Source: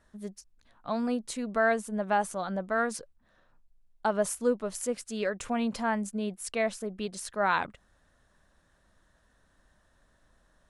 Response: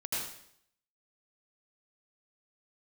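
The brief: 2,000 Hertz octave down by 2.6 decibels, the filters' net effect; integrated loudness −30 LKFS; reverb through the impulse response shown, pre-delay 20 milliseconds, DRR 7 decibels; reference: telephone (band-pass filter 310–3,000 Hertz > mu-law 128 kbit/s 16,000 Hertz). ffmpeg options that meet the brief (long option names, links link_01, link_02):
-filter_complex "[0:a]equalizer=frequency=2000:width_type=o:gain=-3,asplit=2[link_01][link_02];[1:a]atrim=start_sample=2205,adelay=20[link_03];[link_02][link_03]afir=irnorm=-1:irlink=0,volume=-11.5dB[link_04];[link_01][link_04]amix=inputs=2:normalize=0,highpass=310,lowpass=3000,volume=2dB" -ar 16000 -c:a pcm_mulaw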